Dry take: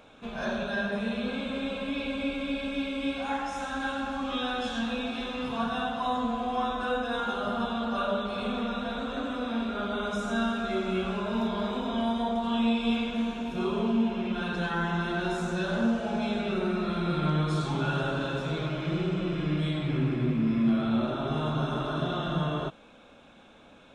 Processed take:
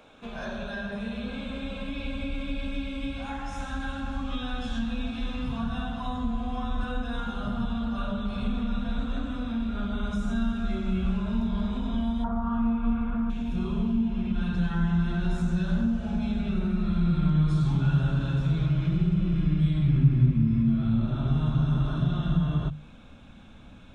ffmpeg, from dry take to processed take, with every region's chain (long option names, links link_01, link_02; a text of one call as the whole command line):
ffmpeg -i in.wav -filter_complex "[0:a]asettb=1/sr,asplit=3[link_01][link_02][link_03];[link_01]atrim=end=12.244[link_04];[link_02]atrim=start=12.24:end=13.3,asetpts=PTS-STARTPTS,afade=type=in:duration=0.004:curve=qsin,afade=type=out:start_time=1.056:duration=0.004:curve=qsin,lowpass=frequency=1300:width_type=q:width=5.7,equalizer=frequency=810:width_type=o:width=0.33:gain=5[link_05];[link_03]atrim=start=13.296[link_06];[link_04][link_05]acrossfade=duration=0.004:curve1=hsin:curve2=qsin[link_07];[link_07][link_06]acrossfade=duration=0.004:curve1=qsin:curve2=hsin,bandreject=frequency=50:width_type=h:width=6,bandreject=frequency=100:width_type=h:width=6,bandreject=frequency=150:width_type=h:width=6,asubboost=boost=8.5:cutoff=150,acrossover=split=160[link_08][link_09];[link_09]acompressor=threshold=-36dB:ratio=2[link_10];[link_08][link_10]amix=inputs=2:normalize=0" out.wav